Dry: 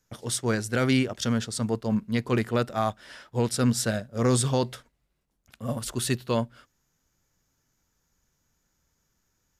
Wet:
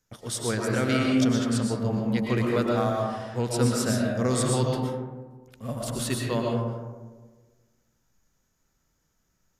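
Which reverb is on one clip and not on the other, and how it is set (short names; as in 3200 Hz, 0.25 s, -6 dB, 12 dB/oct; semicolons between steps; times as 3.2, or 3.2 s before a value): digital reverb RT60 1.4 s, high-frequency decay 0.3×, pre-delay 80 ms, DRR -1.5 dB; gain -3 dB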